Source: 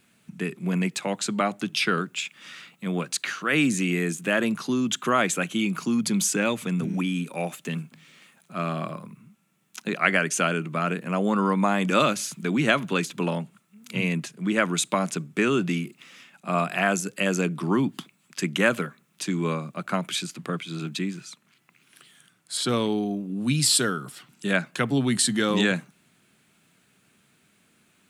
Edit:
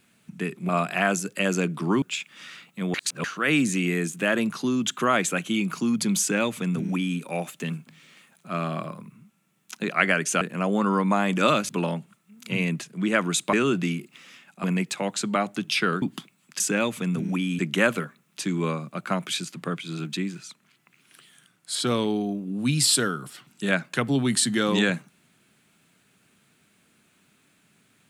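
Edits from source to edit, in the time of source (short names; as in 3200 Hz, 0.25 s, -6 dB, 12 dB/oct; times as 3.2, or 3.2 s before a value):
0.69–2.07 swap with 16.5–17.83
2.99–3.29 reverse
6.25–7.24 copy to 18.41
10.46–10.93 cut
12.21–13.13 cut
14.97–15.39 cut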